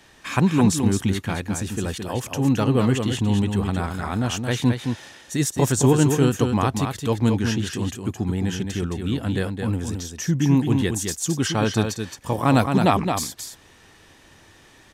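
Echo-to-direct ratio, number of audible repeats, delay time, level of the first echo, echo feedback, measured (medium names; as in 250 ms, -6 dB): -6.0 dB, 1, 218 ms, -6.0 dB, no regular repeats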